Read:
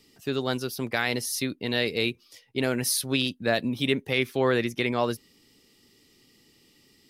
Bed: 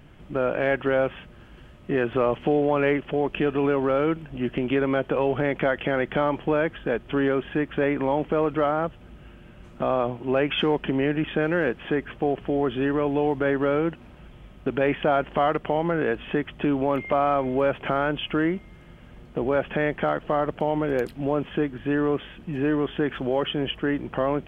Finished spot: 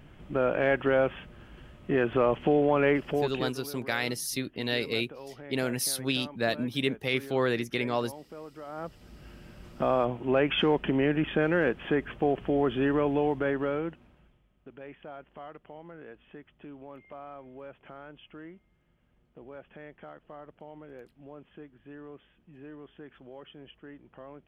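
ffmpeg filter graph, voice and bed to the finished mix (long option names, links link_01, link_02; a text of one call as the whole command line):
ffmpeg -i stem1.wav -i stem2.wav -filter_complex "[0:a]adelay=2950,volume=-3.5dB[link_01];[1:a]volume=17dB,afade=type=out:start_time=3.09:duration=0.48:silence=0.112202,afade=type=in:start_time=8.66:duration=0.67:silence=0.112202,afade=type=out:start_time=12.98:duration=1.45:silence=0.0944061[link_02];[link_01][link_02]amix=inputs=2:normalize=0" out.wav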